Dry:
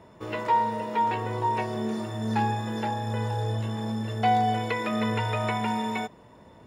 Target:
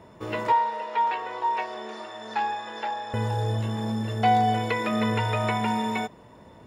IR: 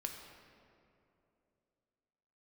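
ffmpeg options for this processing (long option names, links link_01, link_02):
-filter_complex "[0:a]asettb=1/sr,asplit=3[link_01][link_02][link_03];[link_01]atrim=end=0.524[link_04];[link_02]atrim=start=0.52:end=3.14,asetpts=PTS-STARTPTS,afade=type=in:duration=0.004:curve=qsin,afade=type=out:start_time=2.616:duration=0.004:curve=qsin,highpass=640,lowpass=5100[link_05];[link_03]atrim=start=3.136[link_06];[link_04][link_05]acrossfade=duration=0.004:curve1=hsin:curve2=qsin[link_07];[link_07][link_06]acrossfade=duration=0.004:curve1=qsin:curve2=hsin,volume=2dB"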